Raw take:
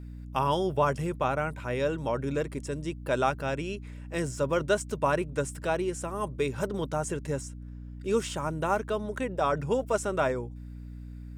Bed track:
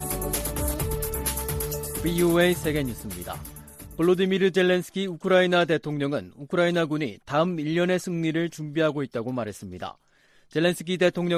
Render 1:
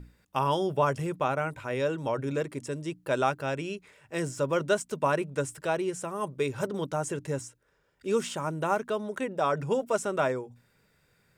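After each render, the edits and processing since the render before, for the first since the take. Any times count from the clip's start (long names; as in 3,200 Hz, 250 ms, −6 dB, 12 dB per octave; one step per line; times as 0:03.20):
mains-hum notches 60/120/180/240/300 Hz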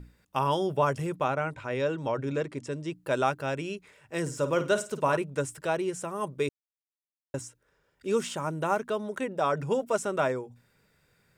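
0:01.30–0:02.93: low-pass filter 6,600 Hz
0:04.21–0:05.17: flutter between parallel walls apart 9 metres, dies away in 0.29 s
0:06.49–0:07.34: silence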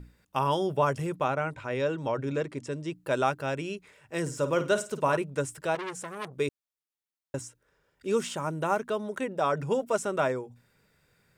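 0:05.75–0:06.34: saturating transformer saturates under 2,700 Hz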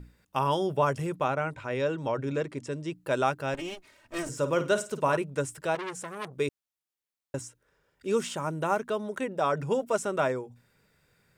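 0:03.54–0:04.29: lower of the sound and its delayed copy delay 3.2 ms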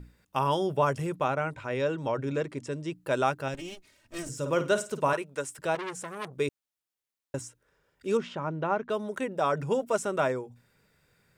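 0:03.48–0:04.46: drawn EQ curve 160 Hz 0 dB, 990 Hz −9 dB, 5,400 Hz 0 dB
0:05.13–0:05.59: high-pass filter 550 Hz 6 dB per octave
0:08.17–0:08.90: high-frequency loss of the air 240 metres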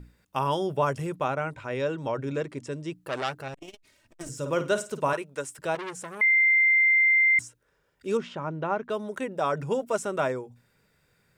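0:03.07–0:04.21: saturating transformer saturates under 2,600 Hz
0:06.21–0:07.39: beep over 2,090 Hz −17 dBFS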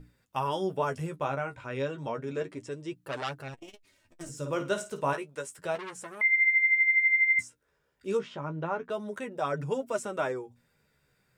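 flanger 0.31 Hz, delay 6.5 ms, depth 9.4 ms, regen +29%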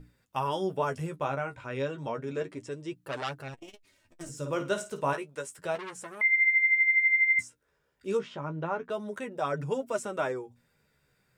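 no processing that can be heard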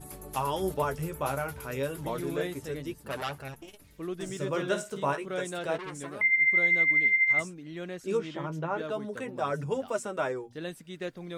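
mix in bed track −15.5 dB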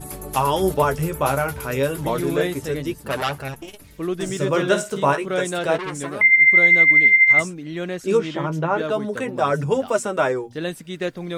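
level +10.5 dB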